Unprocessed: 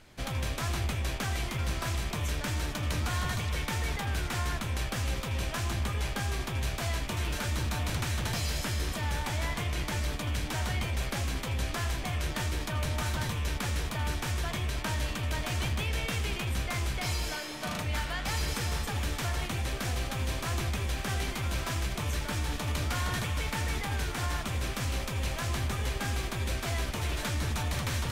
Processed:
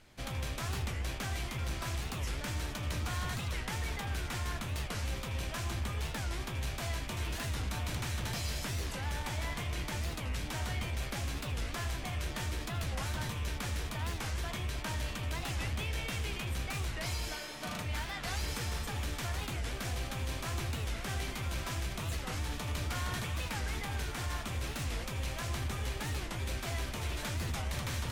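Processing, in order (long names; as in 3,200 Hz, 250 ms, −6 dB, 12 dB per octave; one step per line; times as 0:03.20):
gain into a clipping stage and back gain 25.5 dB
hum removal 50.37 Hz, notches 36
wow of a warped record 45 rpm, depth 250 cents
level −4 dB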